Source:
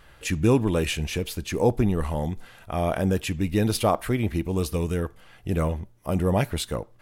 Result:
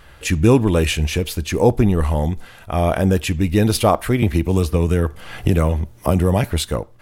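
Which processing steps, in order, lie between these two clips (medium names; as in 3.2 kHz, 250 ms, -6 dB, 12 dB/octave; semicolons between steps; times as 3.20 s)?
peaking EQ 77 Hz +5 dB 0.41 oct; 4.22–6.44 s: three bands compressed up and down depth 100%; trim +6.5 dB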